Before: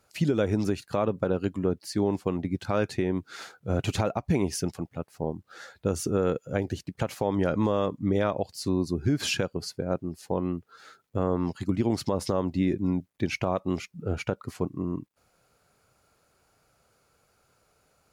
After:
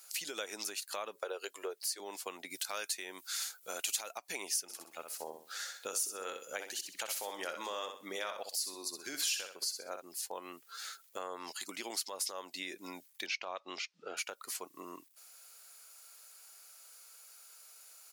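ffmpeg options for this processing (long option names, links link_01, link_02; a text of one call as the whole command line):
ffmpeg -i in.wav -filter_complex "[0:a]asettb=1/sr,asplit=3[link_01][link_02][link_03];[link_01]atrim=end=1.154[link_04];[link_02]atrim=start=1.15:end=2,asetpts=PTS-STARTPTS,afade=type=in:duration=0.004:curve=qsin,afade=type=out:start_time=0.846:duration=0.004:curve=qsin,lowshelf=frequency=310:width_type=q:width=3:gain=-10[link_05];[link_03]atrim=start=1.996[link_06];[link_04][link_05]acrossfade=duration=0.004:curve1=hsin:curve2=qsin[link_07];[link_07][link_06]acrossfade=duration=0.004:curve1=qsin:curve2=hsin,asettb=1/sr,asplit=3[link_08][link_09][link_10];[link_08]atrim=end=2.504[link_11];[link_09]atrim=start=2.5:end=4.18,asetpts=PTS-STARTPTS,afade=type=in:duration=0.004:curve=qsin,afade=type=out:start_time=1.676:duration=0.004:curve=qsin,aemphasis=mode=production:type=cd[link_12];[link_10]atrim=start=4.176[link_13];[link_11][link_12]acrossfade=duration=0.004:curve1=hsin:curve2=qsin[link_14];[link_14][link_13]acrossfade=duration=0.004:curve1=qsin:curve2=hsin,asplit=3[link_15][link_16][link_17];[link_15]afade=type=out:start_time=4.68:duration=0.02[link_18];[link_16]aecho=1:1:63|126|189:0.398|0.104|0.0269,afade=type=in:start_time=4.68:duration=0.02,afade=type=out:start_time=10:duration=0.02[link_19];[link_17]afade=type=in:start_time=10:duration=0.02[link_20];[link_18][link_19][link_20]amix=inputs=3:normalize=0,asettb=1/sr,asplit=3[link_21][link_22][link_23];[link_21]atrim=end=13.264[link_24];[link_22]atrim=start=13.26:end=14.17,asetpts=PTS-STARTPTS,afade=type=in:duration=0.004:curve=qsin,afade=type=out:start_time=0.906:duration=0.004:curve=qsin,lowpass=frequency=5100:width=0.5412,lowpass=frequency=5100:width=1.3066[link_25];[link_23]atrim=start=14.166[link_26];[link_24][link_25]acrossfade=duration=0.004:curve1=hsin:curve2=qsin[link_27];[link_27][link_26]acrossfade=duration=0.004:curve1=qsin:curve2=hsin,highpass=410,aderivative,acompressor=threshold=-57dB:ratio=2.5,volume=16.5dB" out.wav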